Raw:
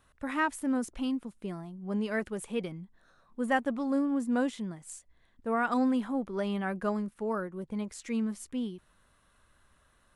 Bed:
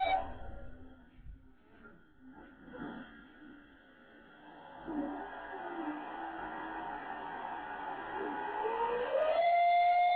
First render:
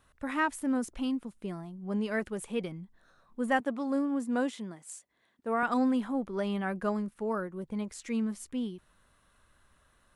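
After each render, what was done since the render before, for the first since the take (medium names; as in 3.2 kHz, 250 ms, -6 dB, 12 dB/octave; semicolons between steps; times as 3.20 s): 3.60–5.63 s: high-pass 220 Hz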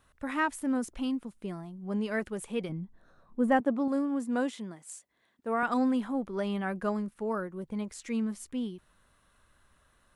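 2.69–3.88 s: tilt shelf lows +6 dB, about 1.2 kHz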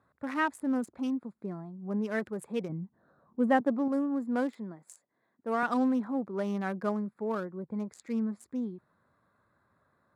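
local Wiener filter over 15 samples; high-pass 98 Hz 24 dB/octave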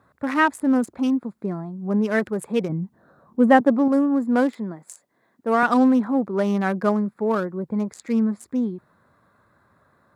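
trim +10.5 dB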